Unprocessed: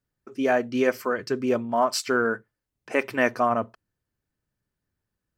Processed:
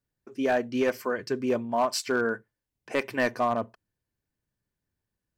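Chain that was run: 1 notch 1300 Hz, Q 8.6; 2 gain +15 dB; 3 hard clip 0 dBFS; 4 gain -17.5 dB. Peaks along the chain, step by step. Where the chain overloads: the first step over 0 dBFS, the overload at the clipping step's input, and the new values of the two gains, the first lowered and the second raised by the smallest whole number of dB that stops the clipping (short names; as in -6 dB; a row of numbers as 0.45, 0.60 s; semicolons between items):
-8.0, +7.0, 0.0, -17.5 dBFS; step 2, 7.0 dB; step 2 +8 dB, step 4 -10.5 dB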